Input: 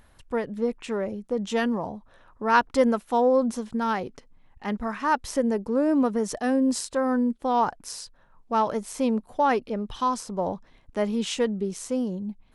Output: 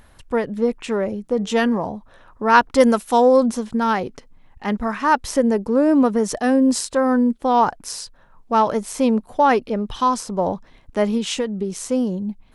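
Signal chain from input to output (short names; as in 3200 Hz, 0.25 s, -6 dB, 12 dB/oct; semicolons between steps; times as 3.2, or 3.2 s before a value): 1.22–1.85 de-hum 148.2 Hz, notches 16; 2.8–3.46 high shelf 3800 Hz +11.5 dB; 11.17–11.79 compressor 6:1, threshold -26 dBFS, peak gain reduction 7.5 dB; gain +6.5 dB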